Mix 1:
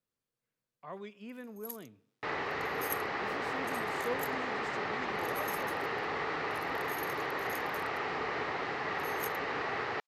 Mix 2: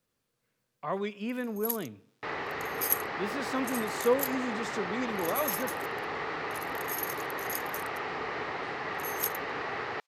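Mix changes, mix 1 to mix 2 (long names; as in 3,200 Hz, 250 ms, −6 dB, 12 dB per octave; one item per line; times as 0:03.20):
speech +11.5 dB
first sound +11.0 dB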